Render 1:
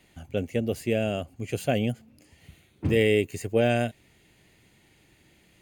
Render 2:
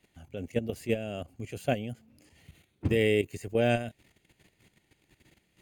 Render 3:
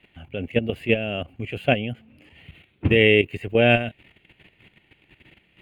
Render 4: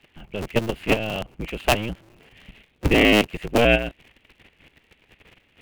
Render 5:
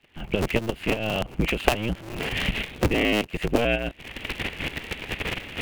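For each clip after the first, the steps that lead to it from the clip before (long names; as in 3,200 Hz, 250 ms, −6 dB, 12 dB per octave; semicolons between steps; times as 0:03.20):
output level in coarse steps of 12 dB
high shelf with overshoot 4,100 Hz −13.5 dB, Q 3; level +7.5 dB
sub-harmonics by changed cycles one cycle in 2, inverted
camcorder AGC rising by 65 dB per second; level −6.5 dB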